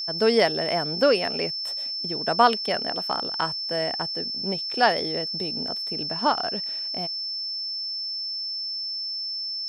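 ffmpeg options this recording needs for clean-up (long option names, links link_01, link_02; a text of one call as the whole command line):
ffmpeg -i in.wav -af "bandreject=frequency=5300:width=30" out.wav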